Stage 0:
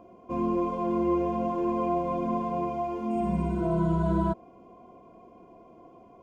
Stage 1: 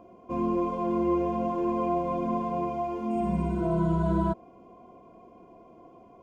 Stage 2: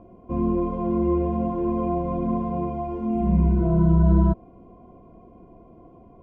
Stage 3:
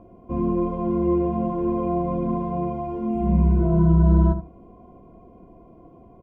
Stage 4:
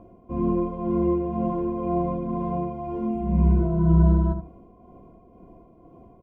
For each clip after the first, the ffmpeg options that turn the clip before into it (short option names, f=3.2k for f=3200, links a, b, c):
-af anull
-af "aemphasis=mode=reproduction:type=riaa,volume=-1.5dB"
-filter_complex "[0:a]asplit=2[a][b];[b]adelay=74,lowpass=f=1.2k:p=1,volume=-9dB,asplit=2[c][d];[d]adelay=74,lowpass=f=1.2k:p=1,volume=0.18,asplit=2[e][f];[f]adelay=74,lowpass=f=1.2k:p=1,volume=0.18[g];[a][c][e][g]amix=inputs=4:normalize=0"
-af "tremolo=f=2:d=0.44"